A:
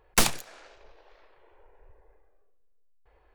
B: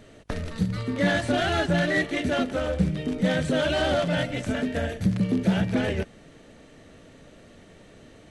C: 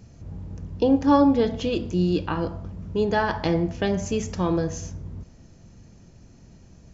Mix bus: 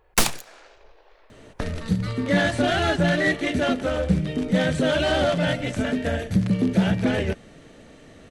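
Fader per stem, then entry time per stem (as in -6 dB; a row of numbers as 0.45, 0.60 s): +2.0 dB, +2.5 dB, off; 0.00 s, 1.30 s, off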